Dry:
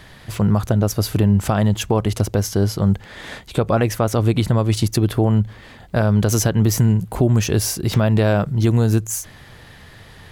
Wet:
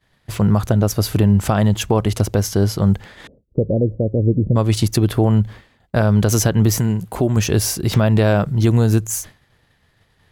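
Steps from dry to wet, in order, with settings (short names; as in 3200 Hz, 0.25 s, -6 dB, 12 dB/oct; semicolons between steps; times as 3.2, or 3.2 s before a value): 3.27–4.56 elliptic low-pass 540 Hz, stop band 60 dB; 6.79–7.37 low shelf 160 Hz -8.5 dB; expander -30 dBFS; gain +1.5 dB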